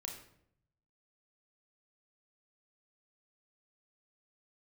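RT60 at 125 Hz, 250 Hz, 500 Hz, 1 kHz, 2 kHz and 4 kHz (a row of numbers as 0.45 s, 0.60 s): 1.2 s, 0.90 s, 0.75 s, 0.60 s, 0.60 s, 0.50 s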